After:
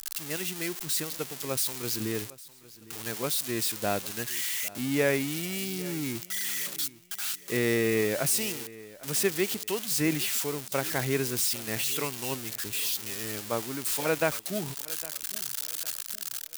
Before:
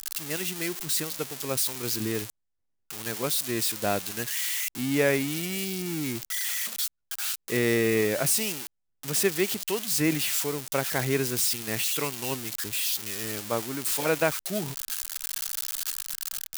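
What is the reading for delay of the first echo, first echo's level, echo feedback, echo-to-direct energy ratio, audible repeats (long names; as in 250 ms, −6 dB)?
807 ms, −19.5 dB, 34%, −19.0 dB, 2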